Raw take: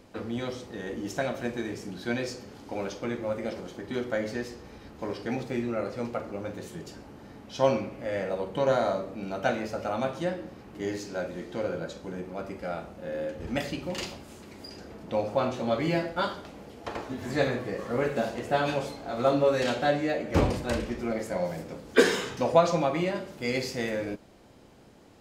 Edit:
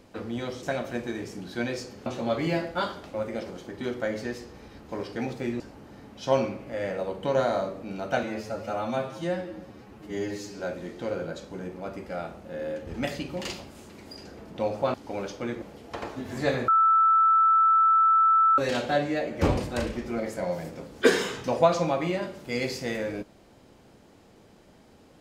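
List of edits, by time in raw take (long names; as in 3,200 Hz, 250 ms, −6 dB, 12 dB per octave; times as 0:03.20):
0:00.63–0:01.13: remove
0:02.56–0:03.24: swap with 0:15.47–0:16.55
0:05.70–0:06.92: remove
0:09.55–0:11.13: time-stretch 1.5×
0:17.61–0:19.51: beep over 1,320 Hz −16.5 dBFS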